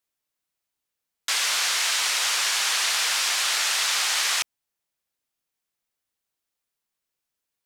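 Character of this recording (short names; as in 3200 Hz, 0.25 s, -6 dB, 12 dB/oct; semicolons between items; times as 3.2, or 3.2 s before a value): noise floor -84 dBFS; spectral tilt +1.0 dB/oct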